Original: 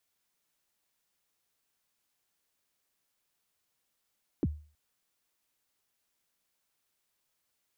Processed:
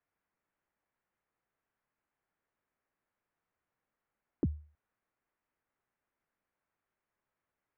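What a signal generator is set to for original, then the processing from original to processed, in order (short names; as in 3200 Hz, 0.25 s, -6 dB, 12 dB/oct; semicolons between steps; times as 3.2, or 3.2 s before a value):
kick drum length 0.32 s, from 390 Hz, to 75 Hz, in 38 ms, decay 0.39 s, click off, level -22 dB
LPF 2000 Hz 24 dB/oct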